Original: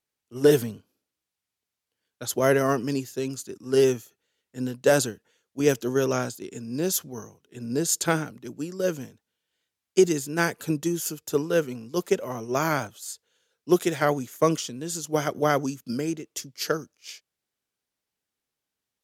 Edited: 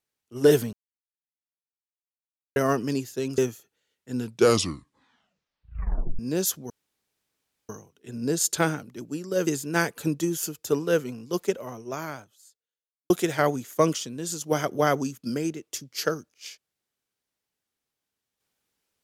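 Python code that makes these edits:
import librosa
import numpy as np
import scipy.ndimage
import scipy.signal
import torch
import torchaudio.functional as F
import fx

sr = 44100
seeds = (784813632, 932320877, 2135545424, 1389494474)

y = fx.edit(x, sr, fx.silence(start_s=0.73, length_s=1.83),
    fx.cut(start_s=3.38, length_s=0.47),
    fx.tape_stop(start_s=4.59, length_s=2.07),
    fx.insert_room_tone(at_s=7.17, length_s=0.99),
    fx.cut(start_s=8.95, length_s=1.15),
    fx.fade_out_span(start_s=11.88, length_s=1.85, curve='qua'), tone=tone)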